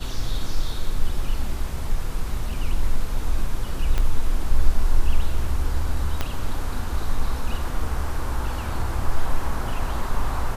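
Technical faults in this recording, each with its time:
0:03.98: click −11 dBFS
0:06.21: click −10 dBFS

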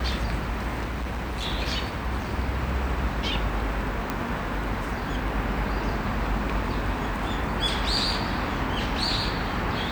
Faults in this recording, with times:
0:00.84–0:01.46: clipping −26.5 dBFS
0:04.10: click −13 dBFS

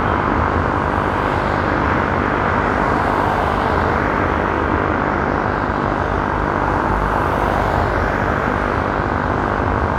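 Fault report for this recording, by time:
mains buzz 50 Hz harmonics 32 −22 dBFS

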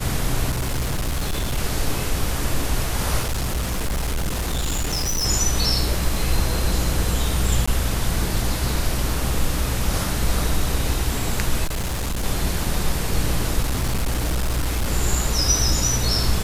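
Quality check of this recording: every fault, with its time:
surface crackle 22 per second −28 dBFS
0:00.50–0:01.58: clipping −19.5 dBFS
0:03.20–0:05.26: clipping −19.5 dBFS
0:07.66–0:07.67: drop-out 15 ms
0:11.64–0:12.24: clipping −21 dBFS
0:13.62–0:14.89: clipping −17.5 dBFS

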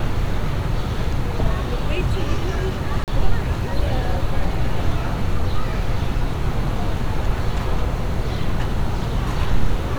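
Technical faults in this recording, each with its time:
0:03.04–0:03.08: drop-out 38 ms

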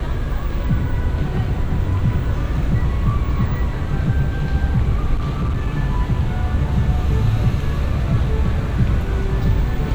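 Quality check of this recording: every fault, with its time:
0:05.16–0:05.68: clipping −16 dBFS

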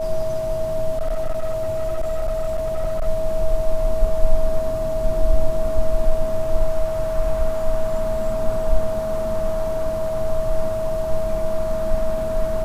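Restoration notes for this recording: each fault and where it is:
whistle 640 Hz −22 dBFS
0:00.97–0:03.06: clipping −17 dBFS

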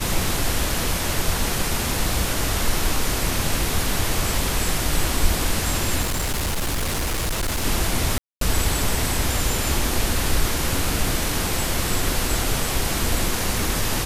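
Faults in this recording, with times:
0:06.01–0:07.65: clipping −20 dBFS
0:08.18–0:08.41: drop-out 233 ms

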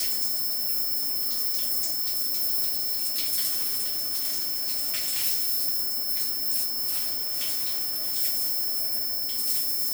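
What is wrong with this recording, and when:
whistle 5,300 Hz −31 dBFS
0:03.47–0:05.25: clipping −22.5 dBFS
0:06.89–0:08.17: clipping −23.5 dBFS

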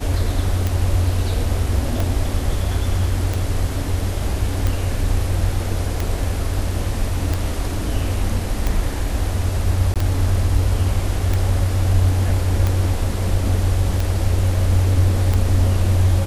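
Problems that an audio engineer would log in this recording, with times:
scratch tick 45 rpm
0:09.94–0:09.96: drop-out 17 ms

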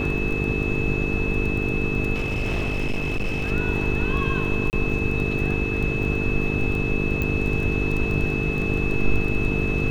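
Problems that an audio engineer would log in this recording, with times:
mains buzz 50 Hz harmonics 9 −27 dBFS
surface crackle 12 per second −27 dBFS
whistle 2,600 Hz −28 dBFS
0:02.14–0:03.52: clipping −20.5 dBFS
0:04.70–0:04.73: drop-out 29 ms
0:07.22: click −13 dBFS

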